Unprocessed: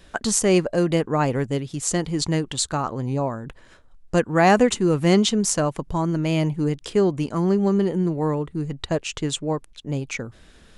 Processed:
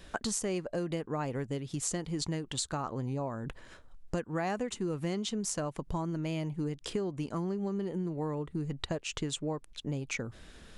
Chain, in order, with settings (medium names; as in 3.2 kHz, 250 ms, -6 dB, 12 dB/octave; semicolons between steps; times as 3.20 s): compression 6:1, threshold -30 dBFS, peak gain reduction 17 dB; trim -1.5 dB